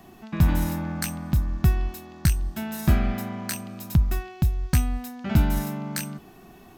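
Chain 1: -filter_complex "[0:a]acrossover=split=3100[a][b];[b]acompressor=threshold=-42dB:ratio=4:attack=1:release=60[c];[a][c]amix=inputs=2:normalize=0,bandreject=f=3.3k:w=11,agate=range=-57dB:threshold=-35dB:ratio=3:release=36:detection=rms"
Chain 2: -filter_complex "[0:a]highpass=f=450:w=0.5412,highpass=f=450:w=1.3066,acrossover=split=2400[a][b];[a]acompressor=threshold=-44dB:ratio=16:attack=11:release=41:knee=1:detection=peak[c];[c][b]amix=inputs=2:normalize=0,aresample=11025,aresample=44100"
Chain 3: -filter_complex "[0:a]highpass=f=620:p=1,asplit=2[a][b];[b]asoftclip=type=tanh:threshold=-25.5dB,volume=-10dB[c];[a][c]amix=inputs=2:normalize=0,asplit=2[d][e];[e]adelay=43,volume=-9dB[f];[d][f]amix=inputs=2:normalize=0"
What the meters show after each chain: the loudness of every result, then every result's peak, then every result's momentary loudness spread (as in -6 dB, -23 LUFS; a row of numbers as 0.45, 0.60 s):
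-26.0, -42.0, -32.5 LUFS; -8.5, -15.5, -10.0 dBFS; 12, 6, 7 LU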